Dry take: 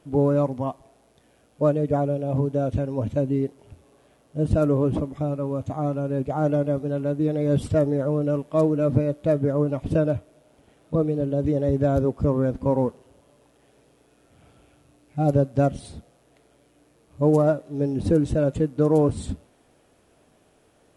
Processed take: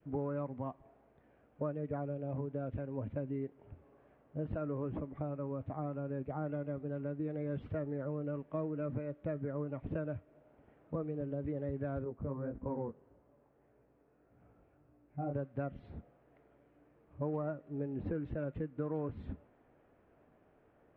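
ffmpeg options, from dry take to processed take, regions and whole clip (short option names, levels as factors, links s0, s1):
-filter_complex "[0:a]asettb=1/sr,asplit=3[s0][s1][s2];[s0]atrim=end=12.044[s3];[s1]atrim=start=12.04:end=15.35,asetpts=PTS-STARTPTS,afade=t=in:d=0.004:c=qsin,afade=t=out:st=3.306:d=0.004:c=qsin,lowpass=f=1600:p=1,flanger=delay=16.5:depth=5.8:speed=1.7[s4];[s2]atrim=start=15.346[s5];[s3][s4]acrossfade=d=0.004:c1=hsin:c2=qsin[s6];[s6][s5]acrossfade=d=0.004:c1=qsin:c2=hsin,lowpass=f=2100:w=0.5412,lowpass=f=2100:w=1.3066,adynamicequalizer=threshold=0.0158:dfrequency=830:dqfactor=0.71:tfrequency=830:tqfactor=0.71:attack=5:release=100:ratio=0.375:range=2.5:mode=cutabove:tftype=bell,acrossover=split=390|1100[s7][s8][s9];[s7]acompressor=threshold=0.0224:ratio=4[s10];[s8]acompressor=threshold=0.0158:ratio=4[s11];[s9]acompressor=threshold=0.00891:ratio=4[s12];[s10][s11][s12]amix=inputs=3:normalize=0,volume=0.473"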